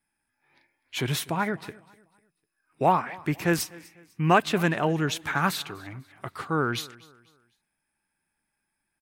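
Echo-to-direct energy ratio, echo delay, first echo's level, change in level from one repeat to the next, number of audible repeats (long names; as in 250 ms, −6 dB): −21.5 dB, 249 ms, −22.0 dB, −9.0 dB, 2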